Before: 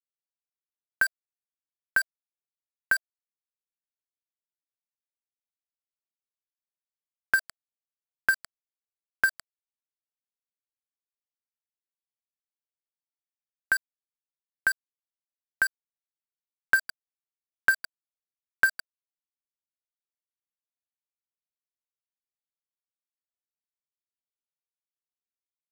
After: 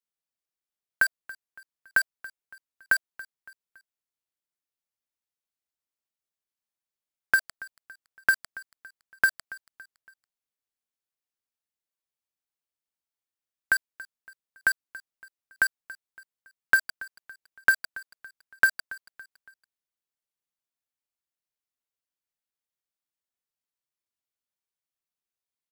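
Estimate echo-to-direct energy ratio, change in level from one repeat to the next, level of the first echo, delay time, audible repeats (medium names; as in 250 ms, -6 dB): -18.0 dB, -7.5 dB, -19.0 dB, 281 ms, 3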